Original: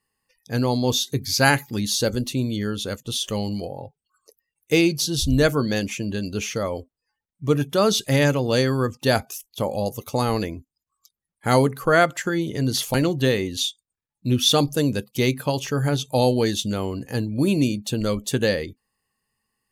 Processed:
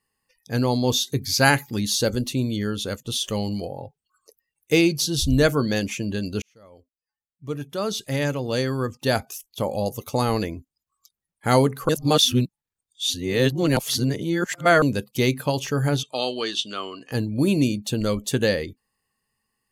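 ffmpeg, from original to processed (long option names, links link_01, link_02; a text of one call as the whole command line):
ffmpeg -i in.wav -filter_complex "[0:a]asettb=1/sr,asplit=3[link_01][link_02][link_03];[link_01]atrim=end=16.034[link_04];[link_02]atrim=start=16.03:end=17.12,asetpts=PTS-STARTPTS,afade=type=in:duration=0.004:curve=qsin,afade=type=out:start_time=1.086:duration=0.004:curve=qsin,highpass=460,equalizer=frequency=520:width_type=q:width=4:gain=-8,equalizer=frequency=850:width_type=q:width=4:gain=-9,equalizer=frequency=1200:width_type=q:width=4:gain=9,equalizer=frequency=2000:width_type=q:width=4:gain=-4,equalizer=frequency=3000:width_type=q:width=4:gain=9,equalizer=frequency=6800:width_type=q:width=4:gain=-8,lowpass=frequency=7700:width=0.5412,lowpass=frequency=7700:width=1.3066[link_05];[link_03]atrim=start=17.116[link_06];[link_04][link_05]acrossfade=duration=0.004:curve1=hsin:curve2=qsin[link_07];[link_07][link_06]acrossfade=duration=0.004:curve1=qsin:curve2=hsin,asplit=4[link_08][link_09][link_10][link_11];[link_08]atrim=end=6.42,asetpts=PTS-STARTPTS,afade=type=out:start_time=6.416:duration=0.004:curve=hsin[link_12];[link_09]atrim=start=6.42:end=11.892,asetpts=PTS-STARTPTS,afade=type=in:duration=3.48[link_13];[link_10]atrim=start=11.888:end=14.822,asetpts=PTS-STARTPTS,areverse[link_14];[link_11]atrim=start=14.818[link_15];[link_12][link_13]concat=n=2:v=0:a=1[link_16];[link_16][link_14]acrossfade=duration=0.004:curve1=hsin:curve2=hsin[link_17];[link_17][link_15]acrossfade=duration=0.004:curve1=hsin:curve2=hsin" out.wav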